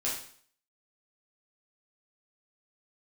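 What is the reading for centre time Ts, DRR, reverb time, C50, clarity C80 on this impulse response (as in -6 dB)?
39 ms, -6.5 dB, 0.55 s, 4.0 dB, 8.5 dB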